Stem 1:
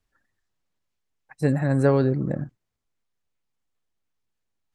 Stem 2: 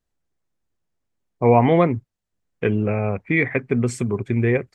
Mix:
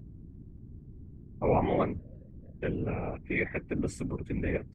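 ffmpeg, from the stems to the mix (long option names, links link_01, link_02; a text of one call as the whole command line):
ffmpeg -i stem1.wav -i stem2.wav -filter_complex "[0:a]asplit=3[link_01][link_02][link_03];[link_01]bandpass=frequency=530:width_type=q:width=8,volume=0dB[link_04];[link_02]bandpass=frequency=1840:width_type=q:width=8,volume=-6dB[link_05];[link_03]bandpass=frequency=2480:width_type=q:width=8,volume=-9dB[link_06];[link_04][link_05][link_06]amix=inputs=3:normalize=0,acompressor=threshold=-40dB:ratio=5,adelay=150,volume=-13.5dB[link_07];[1:a]aeval=exprs='val(0)+0.02*(sin(2*PI*60*n/s)+sin(2*PI*2*60*n/s)/2+sin(2*PI*3*60*n/s)/3+sin(2*PI*4*60*n/s)/4+sin(2*PI*5*60*n/s)/5)':channel_layout=same,volume=-5.5dB,asplit=2[link_08][link_09];[link_09]apad=whole_len=215861[link_10];[link_07][link_10]sidechaincompress=threshold=-31dB:ratio=8:attack=16:release=236[link_11];[link_11][link_08]amix=inputs=2:normalize=0,afftfilt=real='hypot(re,im)*cos(2*PI*random(0))':imag='hypot(re,im)*sin(2*PI*random(1))':win_size=512:overlap=0.75" out.wav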